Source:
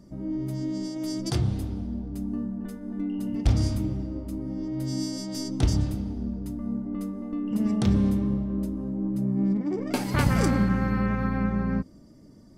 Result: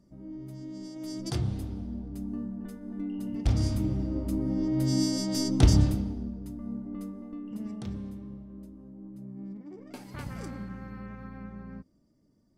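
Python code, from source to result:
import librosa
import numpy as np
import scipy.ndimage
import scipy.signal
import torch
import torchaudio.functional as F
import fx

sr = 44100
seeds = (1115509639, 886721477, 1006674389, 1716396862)

y = fx.gain(x, sr, db=fx.line((0.65, -11.0), (1.32, -4.5), (3.41, -4.5), (4.29, 3.5), (5.85, 3.5), (6.33, -6.0), (7.08, -6.0), (8.07, -16.5)))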